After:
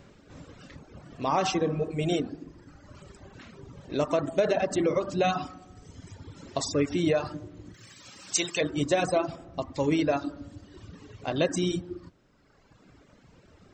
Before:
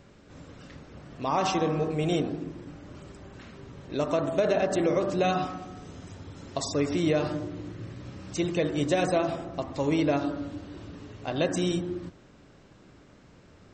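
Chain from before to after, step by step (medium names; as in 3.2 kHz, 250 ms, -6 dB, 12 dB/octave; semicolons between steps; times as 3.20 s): reverb removal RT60 1.7 s; 7.74–8.61 s: tilt EQ +4.5 dB/octave; trim +1.5 dB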